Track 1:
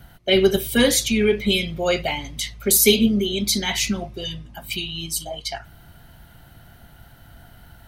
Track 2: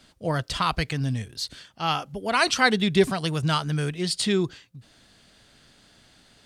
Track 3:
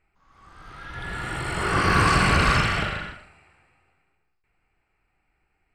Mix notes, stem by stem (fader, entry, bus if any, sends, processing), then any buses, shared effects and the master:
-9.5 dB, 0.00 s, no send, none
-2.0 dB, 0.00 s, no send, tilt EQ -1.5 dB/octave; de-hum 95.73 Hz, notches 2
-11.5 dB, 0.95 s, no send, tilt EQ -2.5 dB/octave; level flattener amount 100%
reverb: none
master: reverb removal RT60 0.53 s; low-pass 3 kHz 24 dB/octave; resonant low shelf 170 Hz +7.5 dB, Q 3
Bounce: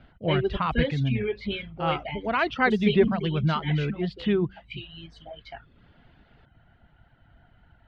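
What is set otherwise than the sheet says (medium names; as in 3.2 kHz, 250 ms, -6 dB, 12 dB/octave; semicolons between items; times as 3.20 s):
stem 3: muted; master: missing resonant low shelf 170 Hz +7.5 dB, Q 3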